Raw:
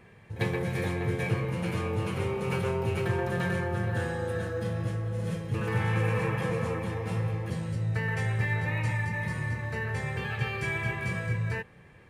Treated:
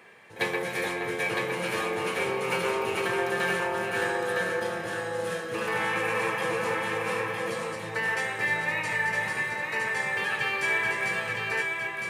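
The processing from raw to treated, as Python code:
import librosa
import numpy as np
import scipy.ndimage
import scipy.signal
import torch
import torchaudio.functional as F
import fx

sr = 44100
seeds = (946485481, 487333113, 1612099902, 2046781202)

p1 = scipy.signal.sosfilt(scipy.signal.butter(2, 290.0, 'highpass', fs=sr, output='sos'), x)
p2 = fx.low_shelf(p1, sr, hz=500.0, db=-8.5)
p3 = p2 + fx.echo_single(p2, sr, ms=961, db=-4.0, dry=0)
y = p3 * librosa.db_to_amplitude(7.0)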